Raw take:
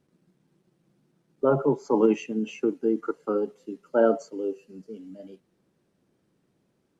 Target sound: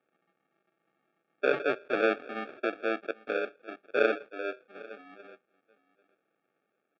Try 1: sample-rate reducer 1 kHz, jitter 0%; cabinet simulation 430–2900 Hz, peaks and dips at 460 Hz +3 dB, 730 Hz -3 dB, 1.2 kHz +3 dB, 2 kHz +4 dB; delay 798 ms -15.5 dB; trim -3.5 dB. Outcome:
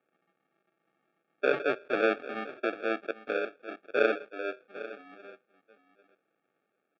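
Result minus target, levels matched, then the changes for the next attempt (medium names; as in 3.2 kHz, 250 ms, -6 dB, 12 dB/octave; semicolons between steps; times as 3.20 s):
echo-to-direct +6 dB
change: delay 798 ms -21.5 dB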